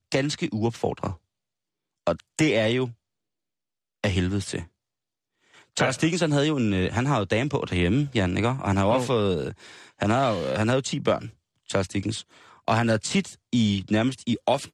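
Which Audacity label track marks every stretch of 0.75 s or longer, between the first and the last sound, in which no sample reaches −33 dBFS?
1.130000	2.070000	silence
2.900000	4.040000	silence
4.630000	5.770000	silence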